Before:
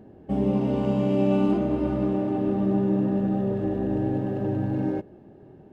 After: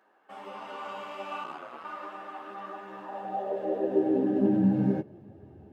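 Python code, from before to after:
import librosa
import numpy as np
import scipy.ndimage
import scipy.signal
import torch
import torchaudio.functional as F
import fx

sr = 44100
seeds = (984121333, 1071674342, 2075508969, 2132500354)

y = fx.chorus_voices(x, sr, voices=4, hz=1.4, base_ms=12, depth_ms=3.0, mix_pct=45)
y = fx.filter_sweep_highpass(y, sr, from_hz=1200.0, to_hz=66.0, start_s=2.91, end_s=5.72, q=3.0)
y = fx.ring_mod(y, sr, carrier_hz=fx.line((1.43, 26.0), (1.83, 87.0)), at=(1.43, 1.83), fade=0.02)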